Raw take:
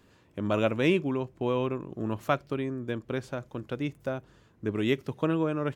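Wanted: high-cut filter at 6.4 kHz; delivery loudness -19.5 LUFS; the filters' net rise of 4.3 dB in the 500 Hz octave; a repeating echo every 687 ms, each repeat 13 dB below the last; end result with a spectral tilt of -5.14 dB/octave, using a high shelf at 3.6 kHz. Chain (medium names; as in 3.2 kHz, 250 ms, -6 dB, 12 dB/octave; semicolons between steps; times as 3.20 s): low-pass 6.4 kHz; peaking EQ 500 Hz +5.5 dB; treble shelf 3.6 kHz -4.5 dB; feedback delay 687 ms, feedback 22%, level -13 dB; trim +8 dB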